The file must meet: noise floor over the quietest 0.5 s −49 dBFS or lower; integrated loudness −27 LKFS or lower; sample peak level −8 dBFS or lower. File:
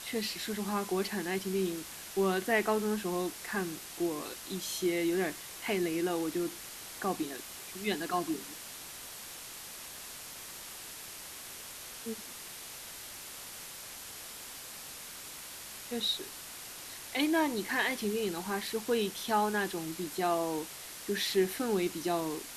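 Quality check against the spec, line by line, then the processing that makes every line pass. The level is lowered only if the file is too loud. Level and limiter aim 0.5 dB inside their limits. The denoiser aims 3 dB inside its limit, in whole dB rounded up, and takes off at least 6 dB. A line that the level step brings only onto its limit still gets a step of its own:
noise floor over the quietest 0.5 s −46 dBFS: out of spec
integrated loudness −34.5 LKFS: in spec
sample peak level −15.5 dBFS: in spec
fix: broadband denoise 6 dB, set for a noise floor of −46 dBFS

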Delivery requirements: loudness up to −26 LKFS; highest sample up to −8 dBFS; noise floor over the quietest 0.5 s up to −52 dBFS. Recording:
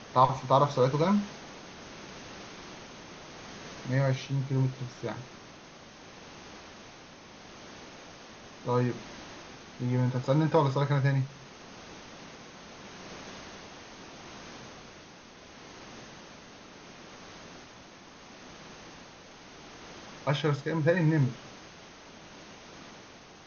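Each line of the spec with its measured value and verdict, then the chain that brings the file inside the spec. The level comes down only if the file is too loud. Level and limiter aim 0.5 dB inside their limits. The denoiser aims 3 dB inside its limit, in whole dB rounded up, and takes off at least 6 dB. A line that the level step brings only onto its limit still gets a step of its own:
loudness −28.5 LKFS: in spec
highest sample −8.5 dBFS: in spec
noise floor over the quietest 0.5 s −51 dBFS: out of spec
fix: broadband denoise 6 dB, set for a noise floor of −51 dBFS

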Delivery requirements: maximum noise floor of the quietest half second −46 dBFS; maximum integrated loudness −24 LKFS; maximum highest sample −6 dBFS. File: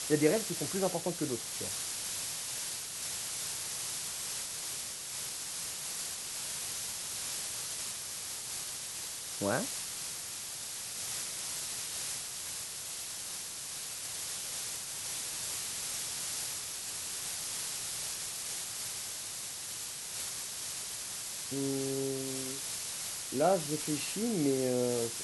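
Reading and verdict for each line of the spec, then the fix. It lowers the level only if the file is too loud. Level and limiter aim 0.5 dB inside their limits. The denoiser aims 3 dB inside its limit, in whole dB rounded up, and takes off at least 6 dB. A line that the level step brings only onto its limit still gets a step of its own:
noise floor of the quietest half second −41 dBFS: out of spec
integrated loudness −35.0 LKFS: in spec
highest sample −12.5 dBFS: in spec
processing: broadband denoise 8 dB, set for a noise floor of −41 dBFS

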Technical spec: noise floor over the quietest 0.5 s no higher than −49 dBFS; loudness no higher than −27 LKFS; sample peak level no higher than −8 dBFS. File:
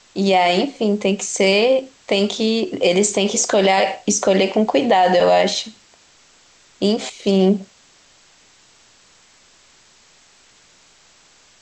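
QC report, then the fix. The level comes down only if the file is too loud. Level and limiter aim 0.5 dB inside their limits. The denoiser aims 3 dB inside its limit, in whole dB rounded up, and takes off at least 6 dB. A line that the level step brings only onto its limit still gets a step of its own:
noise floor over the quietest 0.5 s −52 dBFS: in spec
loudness −17.5 LKFS: out of spec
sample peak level −5.5 dBFS: out of spec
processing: level −10 dB

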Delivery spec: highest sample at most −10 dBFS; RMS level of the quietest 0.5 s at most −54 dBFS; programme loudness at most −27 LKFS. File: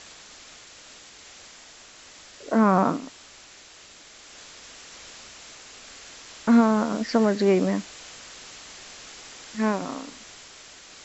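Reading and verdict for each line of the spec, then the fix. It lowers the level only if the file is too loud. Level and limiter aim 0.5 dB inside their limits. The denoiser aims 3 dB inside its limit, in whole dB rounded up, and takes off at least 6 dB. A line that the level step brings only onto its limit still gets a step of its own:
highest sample −6.5 dBFS: out of spec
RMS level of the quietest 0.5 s −49 dBFS: out of spec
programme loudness −23.0 LKFS: out of spec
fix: broadband denoise 6 dB, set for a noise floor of −49 dBFS
level −4.5 dB

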